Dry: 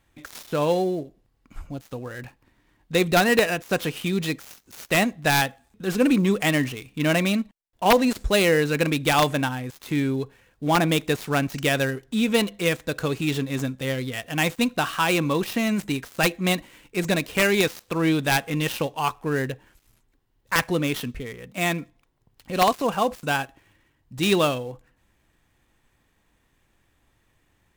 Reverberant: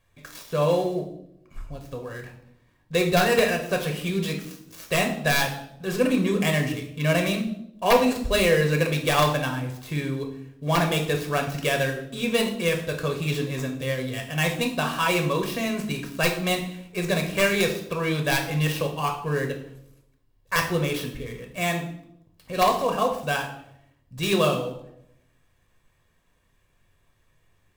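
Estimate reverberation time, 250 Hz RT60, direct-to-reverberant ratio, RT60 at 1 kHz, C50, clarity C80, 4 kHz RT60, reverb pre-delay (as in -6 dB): 0.75 s, 0.90 s, 2.5 dB, 0.65 s, 8.5 dB, 12.0 dB, 0.60 s, 7 ms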